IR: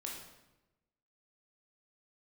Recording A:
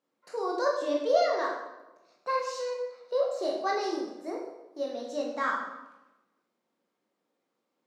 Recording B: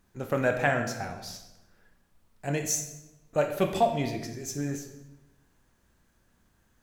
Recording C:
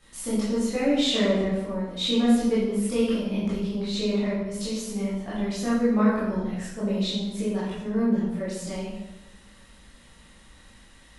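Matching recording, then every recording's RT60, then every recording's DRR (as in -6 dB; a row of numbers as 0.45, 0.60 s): A; 1.0, 1.0, 1.0 s; -2.5, 4.5, -11.0 dB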